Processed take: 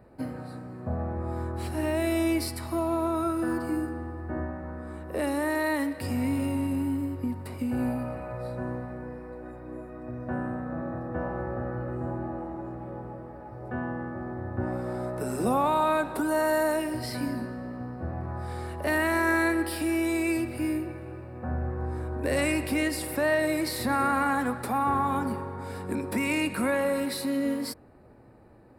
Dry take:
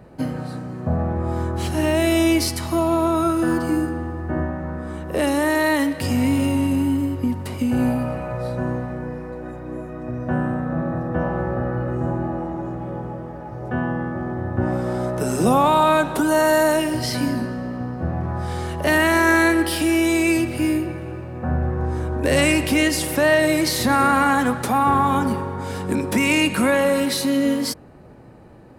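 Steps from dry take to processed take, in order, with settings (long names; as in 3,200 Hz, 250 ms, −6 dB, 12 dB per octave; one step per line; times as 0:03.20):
thirty-one-band graphic EQ 160 Hz −8 dB, 3,150 Hz −9 dB, 6,300 Hz −12 dB
level −8 dB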